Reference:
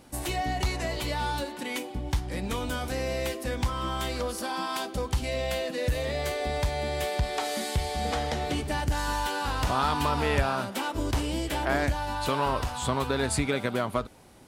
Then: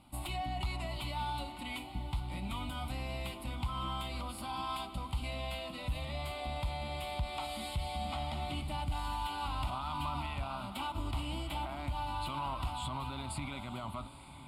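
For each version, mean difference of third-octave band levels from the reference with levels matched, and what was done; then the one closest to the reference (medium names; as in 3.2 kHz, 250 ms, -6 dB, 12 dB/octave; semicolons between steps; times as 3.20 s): 5.0 dB: low-pass 11 kHz 12 dB/octave; peak limiter -22.5 dBFS, peak gain reduction 11.5 dB; static phaser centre 1.7 kHz, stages 6; echo that smears into a reverb 912 ms, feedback 47%, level -13 dB; trim -4 dB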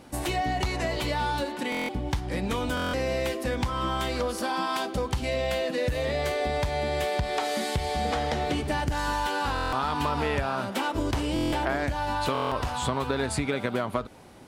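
2.5 dB: bass shelf 63 Hz -6.5 dB; compression, threshold -28 dBFS, peak gain reduction 8 dB; treble shelf 5.4 kHz -7.5 dB; buffer glitch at 1.70/2.75/9.54/11.34/12.33 s, samples 1024, times 7; trim +5 dB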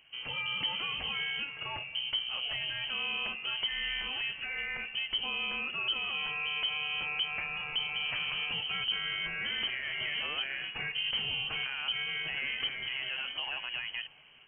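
18.0 dB: level rider gain up to 4 dB; peak limiter -18.5 dBFS, peak gain reduction 11.5 dB; on a send: feedback echo behind a high-pass 643 ms, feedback 85%, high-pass 2.3 kHz, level -24 dB; on the sum: frequency inversion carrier 3.1 kHz; trim -8 dB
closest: second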